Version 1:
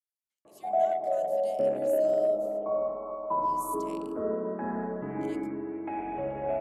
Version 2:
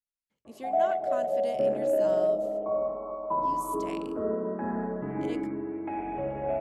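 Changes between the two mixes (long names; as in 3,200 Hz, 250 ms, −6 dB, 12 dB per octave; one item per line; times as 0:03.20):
speech: remove first difference
master: add low-shelf EQ 200 Hz +4.5 dB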